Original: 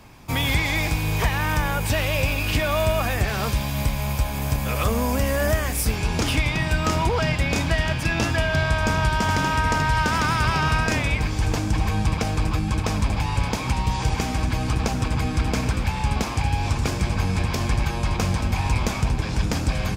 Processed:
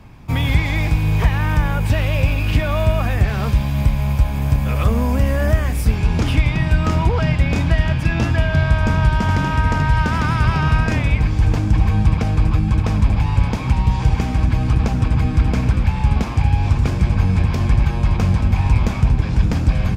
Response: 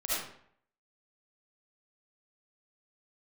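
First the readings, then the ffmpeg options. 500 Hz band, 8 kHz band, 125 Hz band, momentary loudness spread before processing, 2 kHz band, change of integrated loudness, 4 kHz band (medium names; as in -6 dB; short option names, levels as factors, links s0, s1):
+0.5 dB, -7.5 dB, +7.5 dB, 4 LU, -0.5 dB, +5.0 dB, -3.0 dB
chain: -af "bass=f=250:g=8,treble=f=4000:g=-8"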